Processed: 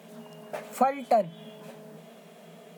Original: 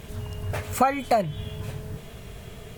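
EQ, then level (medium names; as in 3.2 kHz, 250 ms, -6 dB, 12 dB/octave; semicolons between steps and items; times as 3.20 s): rippled Chebyshev high-pass 160 Hz, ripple 9 dB; 0.0 dB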